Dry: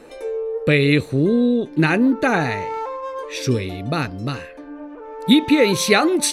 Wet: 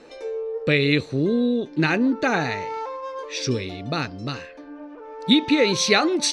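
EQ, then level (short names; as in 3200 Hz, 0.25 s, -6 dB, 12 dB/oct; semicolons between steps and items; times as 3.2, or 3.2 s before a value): synth low-pass 5400 Hz, resonance Q 1.9; low shelf 91 Hz -6.5 dB; -3.5 dB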